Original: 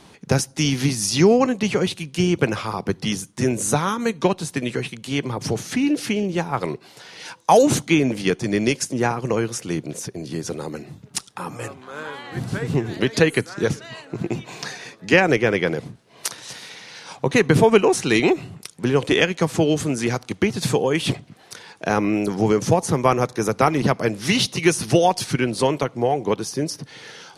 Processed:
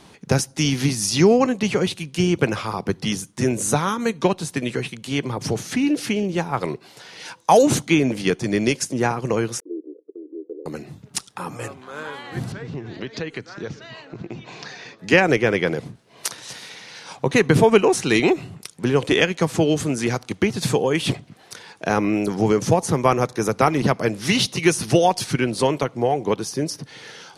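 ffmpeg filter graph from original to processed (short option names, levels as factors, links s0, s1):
-filter_complex "[0:a]asettb=1/sr,asplit=3[s0][s1][s2];[s0]atrim=end=9.604[s3];[s1]atrim=start=9.6:end=10.66,asetpts=PTS-STARTPTS,afade=t=in:d=0.004:c=qsin,afade=t=out:st=1.056:d=0.004:c=qsin,aeval=exprs='if(lt(val(0),0),0.447*val(0),val(0))':c=same,asuperpass=centerf=380:order=8:qfactor=1.9,agate=range=0.0224:threshold=0.00562:ratio=3:release=100:detection=peak[s4];[s2]atrim=start=10.656[s5];[s3][s4]acrossfade=d=0.004:c1=hsin:c2=qsin[s6];[s6][s5]acrossfade=d=0.004:c1=qsin:c2=hsin,asettb=1/sr,asplit=3[s7][s8][s9];[s7]atrim=end=12.524[s10];[s8]atrim=start=12.52:end=14.99,asetpts=PTS-STARTPTS,afade=t=in:d=0.004:c=qsin,afade=t=out:st=2.466:d=0.004:c=qsin,lowpass=f=5800:w=0.5412,lowpass=f=5800:w=1.3066,acompressor=threshold=0.0178:ratio=2:attack=3.2:release=140:knee=1:detection=peak[s11];[s9]atrim=start=14.986[s12];[s10][s11]acrossfade=d=0.004:c1=hsin:c2=qsin[s13];[s13][s12]acrossfade=d=0.004:c1=qsin:c2=hsin"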